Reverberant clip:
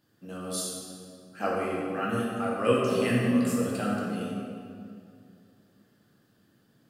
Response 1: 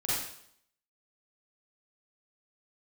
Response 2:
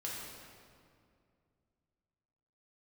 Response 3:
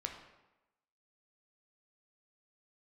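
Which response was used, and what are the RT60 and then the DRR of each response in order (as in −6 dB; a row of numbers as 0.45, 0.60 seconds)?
2; 0.65, 2.3, 1.0 seconds; −9.5, −5.5, 2.5 decibels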